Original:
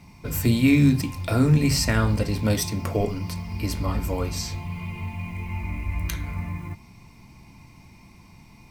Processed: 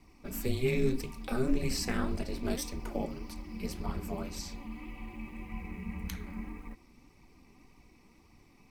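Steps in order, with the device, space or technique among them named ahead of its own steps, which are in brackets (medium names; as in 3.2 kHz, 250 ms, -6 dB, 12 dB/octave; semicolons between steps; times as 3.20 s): alien voice (ring modulator 130 Hz; flange 1.8 Hz, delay 0.8 ms, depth 4.3 ms, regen +44%); trim -4 dB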